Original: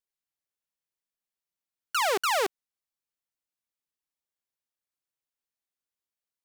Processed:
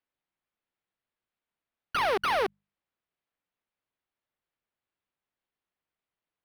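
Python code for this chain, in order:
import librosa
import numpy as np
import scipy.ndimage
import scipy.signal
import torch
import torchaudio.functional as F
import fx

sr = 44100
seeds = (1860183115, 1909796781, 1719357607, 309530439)

y = fx.hum_notches(x, sr, base_hz=50, count=4)
y = np.interp(np.arange(len(y)), np.arange(len(y))[::6], y[::6])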